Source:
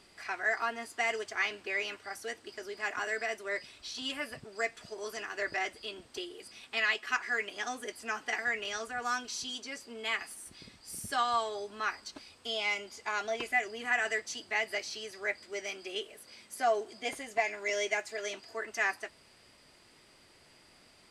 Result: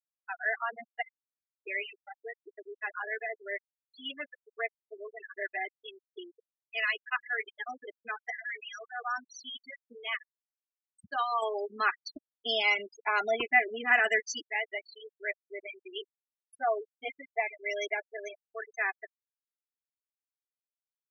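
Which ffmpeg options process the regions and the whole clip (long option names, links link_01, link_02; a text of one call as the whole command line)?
ffmpeg -i in.wav -filter_complex "[0:a]asettb=1/sr,asplit=3[link_01][link_02][link_03];[link_01]atrim=end=1.024[link_04];[link_02]atrim=start=1.02:end=1.61,asetpts=PTS-STARTPTS,afade=type=in:duration=0.004:curve=qsin,afade=type=out:start_time=0.586:duration=0.004:curve=qsin,aeval=exprs='if(lt(val(0),0),0.708*val(0),val(0))':channel_layout=same,bandpass=frequency=2100:width_type=q:width=12,acompressor=threshold=-47dB:ratio=8:attack=3.2:release=140:knee=1:detection=peak[link_05];[link_03]atrim=start=1.606[link_06];[link_04][link_05]acrossfade=duration=0.004:curve1=hsin:curve2=qsin[link_07];[link_07][link_06]acrossfade=duration=0.004:curve1=qsin:curve2=hsin,asettb=1/sr,asplit=3[link_08][link_09][link_10];[link_08]atrim=end=8.314[link_11];[link_09]atrim=start=8.31:end=8.94,asetpts=PTS-STARTPTS,afade=type=in:duration=0.004:curve=qsin,afade=type=out:start_time=0.626:duration=0.004:curve=qsin,highpass=frequency=550:poles=1,volume=33dB,asoftclip=hard,volume=-33dB[link_12];[link_10]atrim=start=8.936[link_13];[link_11][link_12]acrossfade=duration=0.004:curve1=hsin:curve2=qsin[link_14];[link_14][link_13]acrossfade=duration=0.004:curve1=qsin:curve2=hsin,asettb=1/sr,asplit=3[link_15][link_16][link_17];[link_15]atrim=end=11.424[link_18];[link_16]atrim=start=11.42:end=14.46,asetpts=PTS-STARTPTS,afade=type=in:duration=0.004:curve=qsin,afade=type=out:start_time=3.036:duration=0.004:curve=qsin,lowshelf=frequency=150:gain=10,acontrast=54,aeval=exprs='val(0)+0.00224*(sin(2*PI*50*n/s)+sin(2*PI*2*50*n/s)/2+sin(2*PI*3*50*n/s)/3+sin(2*PI*4*50*n/s)/4+sin(2*PI*5*50*n/s)/5)':channel_layout=same[link_19];[link_17]atrim=start=14.456[link_20];[link_18][link_19]acrossfade=duration=0.004:curve1=hsin:curve2=qsin[link_21];[link_21][link_20]acrossfade=duration=0.004:curve1=qsin:curve2=hsin,afftfilt=real='re*gte(hypot(re,im),0.0501)':imag='im*gte(hypot(re,im),0.0501)':win_size=1024:overlap=0.75,highpass=frequency=330:poles=1" out.wav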